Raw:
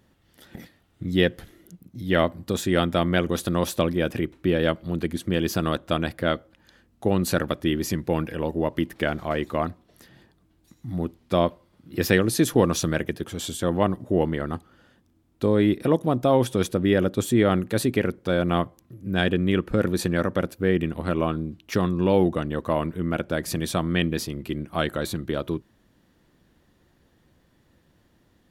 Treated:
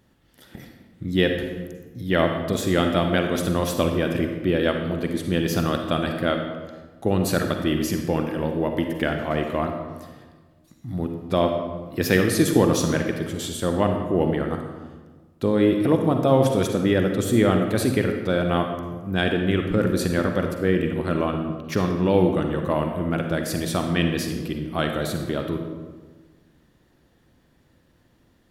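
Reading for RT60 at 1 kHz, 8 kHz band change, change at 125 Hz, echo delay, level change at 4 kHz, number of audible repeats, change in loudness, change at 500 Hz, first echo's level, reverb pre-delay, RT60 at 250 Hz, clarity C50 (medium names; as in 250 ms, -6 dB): 1.3 s, +1.0 dB, +1.5 dB, no echo, +1.0 dB, no echo, +1.5 dB, +1.5 dB, no echo, 40 ms, 1.6 s, 5.0 dB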